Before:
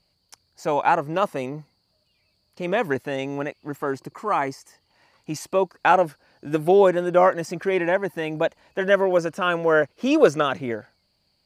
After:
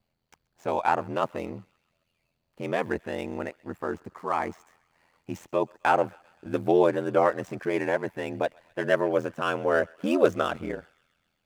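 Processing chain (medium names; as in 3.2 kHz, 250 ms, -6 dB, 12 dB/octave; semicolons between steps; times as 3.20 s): median filter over 9 samples; ring modulator 42 Hz; thinning echo 131 ms, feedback 72%, high-pass 1.2 kHz, level -24 dB; trim -2 dB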